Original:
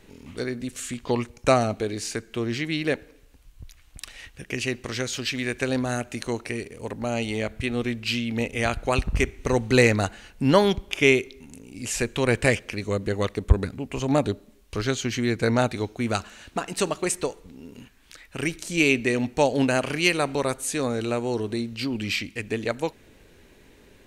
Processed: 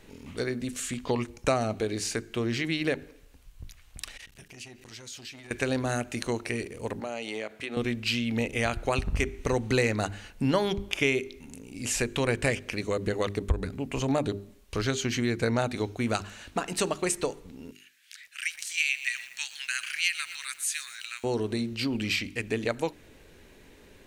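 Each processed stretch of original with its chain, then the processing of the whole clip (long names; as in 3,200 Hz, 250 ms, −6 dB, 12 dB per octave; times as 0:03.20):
0:04.17–0:05.51: high-shelf EQ 2,800 Hz +7.5 dB + downward compressor 5 to 1, threshold −40 dBFS + saturating transformer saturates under 1,200 Hz
0:07.00–0:07.77: high-pass filter 330 Hz + high-shelf EQ 6,500 Hz −5 dB + downward compressor 4 to 1, threshold −30 dBFS
0:17.71–0:21.24: Butterworth high-pass 1,600 Hz + feedback echo at a low word length 120 ms, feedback 55%, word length 7 bits, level −14.5 dB
whole clip: mains-hum notches 50/100/150/200/250/300/350/400 Hz; downward compressor 2.5 to 1, threshold −24 dBFS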